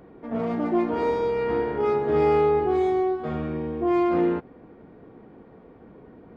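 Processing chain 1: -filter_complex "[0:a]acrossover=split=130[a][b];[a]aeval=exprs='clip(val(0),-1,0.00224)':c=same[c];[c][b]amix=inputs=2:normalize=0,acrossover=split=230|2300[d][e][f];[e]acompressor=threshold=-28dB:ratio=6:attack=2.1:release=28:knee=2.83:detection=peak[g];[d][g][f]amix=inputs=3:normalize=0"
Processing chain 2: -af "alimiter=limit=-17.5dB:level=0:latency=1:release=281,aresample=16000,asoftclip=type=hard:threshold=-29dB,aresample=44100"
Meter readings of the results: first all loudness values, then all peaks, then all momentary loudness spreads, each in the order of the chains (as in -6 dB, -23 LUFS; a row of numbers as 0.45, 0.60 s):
-29.0, -31.5 LUFS; -18.0, -28.5 dBFS; 21, 18 LU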